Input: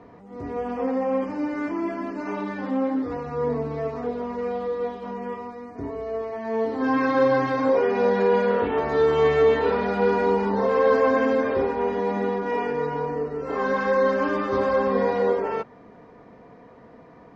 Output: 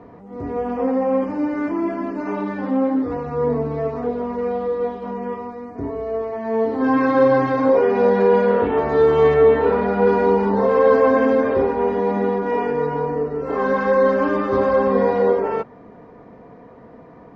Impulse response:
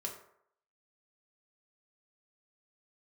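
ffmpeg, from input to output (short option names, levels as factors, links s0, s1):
-filter_complex "[0:a]asettb=1/sr,asplit=3[s0][s1][s2];[s0]atrim=end=9.344[s3];[s1]atrim=start=9.34:end=10.07,asetpts=PTS-STARTPTS,afade=t=in:d=0.004:c=qsin,afade=t=out:st=0.726:d=0.004:c=qsin,acrossover=split=2900[s4][s5];[s5]acompressor=threshold=0.00282:ratio=4:attack=1:release=60[s6];[s4][s6]amix=inputs=2:normalize=0[s7];[s2]atrim=start=10.066[s8];[s3][s7]acrossfade=d=0.004:c1=hsin:c2=qsin[s9];[s9][s8]acrossfade=d=0.004:c1=qsin:c2=hsin,highshelf=f=2000:g=-9,volume=1.88"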